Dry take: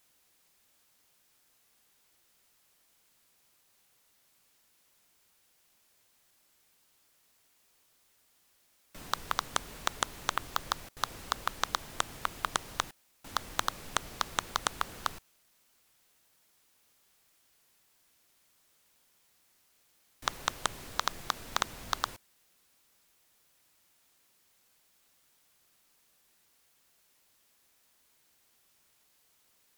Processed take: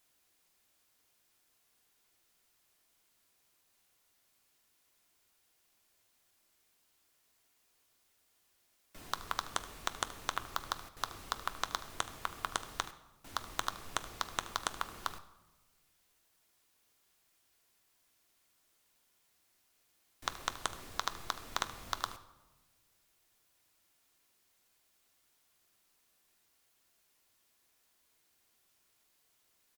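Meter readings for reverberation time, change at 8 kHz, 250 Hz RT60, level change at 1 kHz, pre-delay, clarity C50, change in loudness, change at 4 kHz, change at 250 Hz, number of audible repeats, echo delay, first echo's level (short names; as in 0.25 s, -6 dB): 1.2 s, -4.5 dB, 1.6 s, -4.5 dB, 3 ms, 13.5 dB, -4.5 dB, -4.5 dB, -4.5 dB, 1, 75 ms, -17.0 dB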